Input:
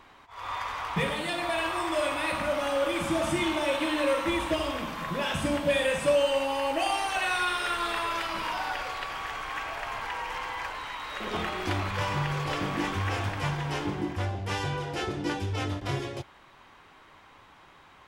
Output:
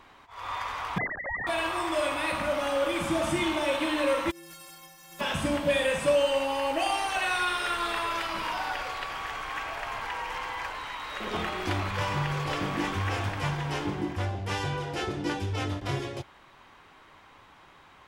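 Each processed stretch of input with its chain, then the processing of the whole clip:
0:00.98–0:01.47: three sine waves on the formant tracks + high-frequency loss of the air 460 metres + voice inversion scrambler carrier 2,600 Hz
0:04.30–0:05.19: compressing power law on the bin magnitudes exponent 0.28 + stiff-string resonator 160 Hz, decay 0.84 s, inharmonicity 0.03 + downward compressor 12 to 1, threshold −42 dBFS
whole clip: no processing

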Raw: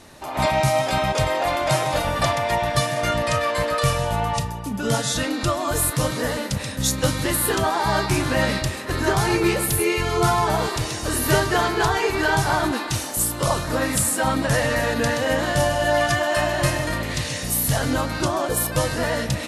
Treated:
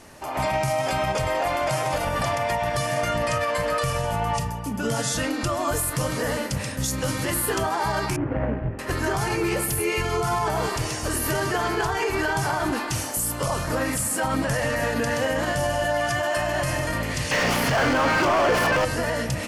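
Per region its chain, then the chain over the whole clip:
0:08.16–0:08.79: running median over 41 samples + low-pass filter 2,300 Hz 24 dB per octave + double-tracking delay 18 ms −7 dB
0:17.31–0:18.85: running median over 5 samples + low-pass filter 8,400 Hz + mid-hump overdrive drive 31 dB, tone 2,400 Hz, clips at −9 dBFS
whole clip: parametric band 3,800 Hz −10 dB 0.21 octaves; mains-hum notches 50/100/150/200/250/300/350 Hz; brickwall limiter −15.5 dBFS

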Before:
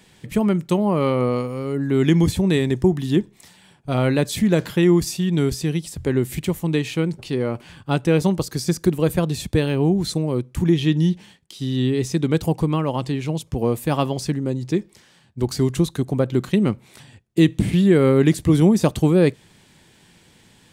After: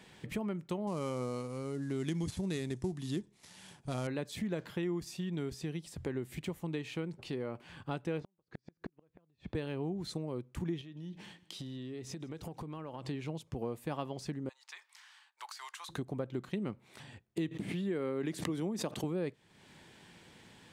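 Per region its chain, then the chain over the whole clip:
0:00.87–0:04.07: gap after every zero crossing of 0.078 ms + elliptic low-pass filter 11,000 Hz + bass and treble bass +4 dB, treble +13 dB
0:08.20–0:09.55: low-pass filter 2,700 Hz + downward compressor 2.5 to 1, threshold −23 dBFS + gate with flip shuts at −19 dBFS, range −42 dB
0:10.81–0:13.05: downward compressor 10 to 1, threshold −31 dBFS + repeating echo 159 ms, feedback 47%, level −21.5 dB
0:14.49–0:15.89: Butterworth high-pass 900 Hz + downward compressor, threshold −37 dBFS
0:17.51–0:19.04: high-pass filter 170 Hz + background raised ahead of every attack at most 82 dB per second
whole clip: low-pass filter 1,400 Hz 6 dB per octave; spectral tilt +2 dB per octave; downward compressor 2.5 to 1, threshold −41 dBFS

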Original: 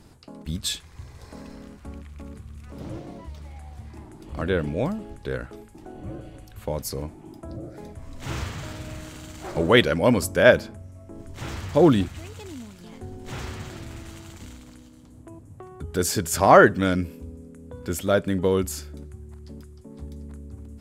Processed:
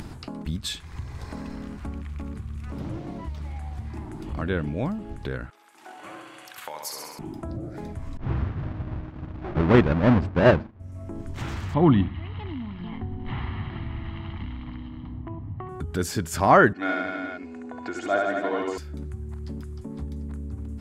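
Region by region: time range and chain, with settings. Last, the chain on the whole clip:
0:05.50–0:07.19: noise gate −40 dBFS, range −7 dB + high-pass filter 1,100 Hz + flutter between parallel walls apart 11.3 metres, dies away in 0.85 s
0:08.17–0:10.80: each half-wave held at its own peak + head-to-tape spacing loss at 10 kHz 38 dB + downward expander −29 dBFS
0:11.74–0:15.69: Butterworth low-pass 3,500 Hz + comb filter 1 ms, depth 52% + repeating echo 68 ms, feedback 51%, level −19 dB
0:16.73–0:18.78: loudspeaker in its box 410–5,800 Hz, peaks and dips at 410 Hz −8 dB, 740 Hz +6 dB, 1,200 Hz −4 dB, 3,300 Hz −9 dB, 5,400 Hz −8 dB + comb filter 2.8 ms + reverse bouncing-ball delay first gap 70 ms, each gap 1.1×, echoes 5, each echo −2 dB
whole clip: high-shelf EQ 3,900 Hz −10 dB; upward compression, threshold −25 dBFS; parametric band 510 Hz −6.5 dB 0.75 octaves

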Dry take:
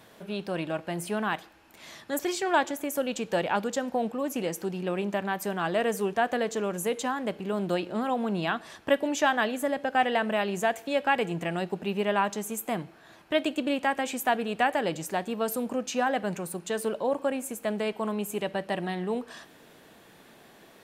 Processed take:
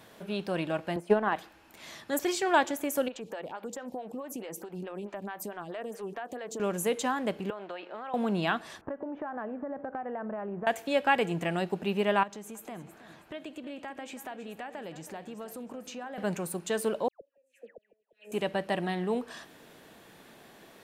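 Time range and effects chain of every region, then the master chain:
0:00.96–0:01.36: high-pass filter 450 Hz + spectral tilt −4.5 dB per octave + transient designer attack +10 dB, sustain −7 dB
0:03.08–0:06.60: downward compressor, threshold −33 dBFS + phaser with staggered stages 4.6 Hz
0:07.50–0:08.14: band-pass filter 640–2,600 Hz + downward compressor, threshold −35 dBFS
0:08.81–0:10.67: low-pass filter 1,400 Hz 24 dB per octave + downward compressor 16 to 1, threshold −32 dBFS
0:12.23–0:16.18: high-shelf EQ 6,200 Hz −8 dB + downward compressor 3 to 1, threshold −42 dBFS + repeating echo 321 ms, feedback 35%, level −14 dB
0:17.08–0:18.32: formant filter e + gate with flip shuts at −33 dBFS, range −38 dB + all-pass dispersion lows, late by 131 ms, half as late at 1,500 Hz
whole clip: no processing

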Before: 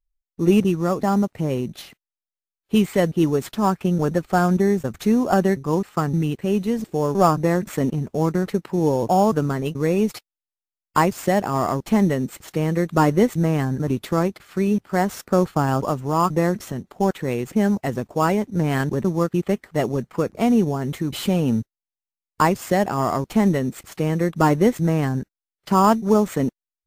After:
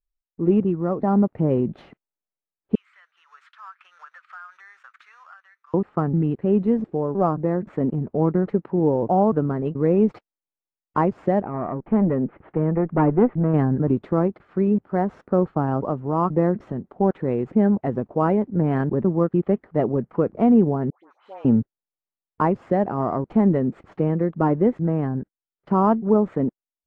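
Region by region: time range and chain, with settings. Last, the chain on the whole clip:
0:02.75–0:05.74: elliptic high-pass filter 1,300 Hz, stop band 80 dB + downward compressor 3 to 1, threshold −45 dBFS
0:11.42–0:13.54: low-pass filter 2,500 Hz 24 dB per octave + tube saturation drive 12 dB, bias 0.6
0:20.90–0:21.45: downward expander −24 dBFS + four-pole ladder high-pass 740 Hz, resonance 35% + all-pass dispersion highs, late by 99 ms, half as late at 1,700 Hz
whole clip: low-pass filter 1,400 Hz 12 dB per octave; parametric band 320 Hz +5.5 dB 2.9 octaves; automatic gain control; level −6.5 dB

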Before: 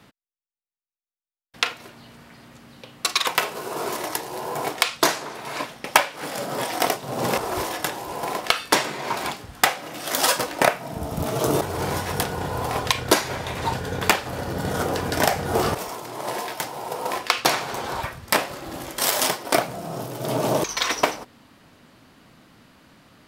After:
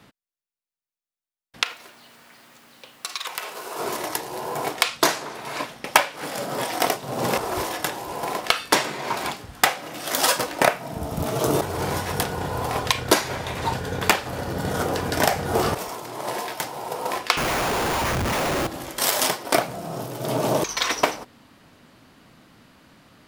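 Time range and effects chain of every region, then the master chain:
0:01.63–0:03.79: high-pass filter 700 Hz 6 dB per octave + downward compressor 4 to 1, threshold −27 dBFS + bit-depth reduction 10 bits, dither triangular
0:17.37–0:18.67: linear delta modulator 16 kbit/s, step −18 dBFS + comparator with hysteresis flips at −27 dBFS
whole clip: no processing

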